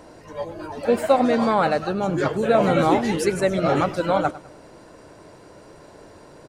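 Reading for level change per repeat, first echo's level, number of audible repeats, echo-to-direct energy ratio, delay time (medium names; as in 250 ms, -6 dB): -10.0 dB, -18.0 dB, 2, -17.5 dB, 101 ms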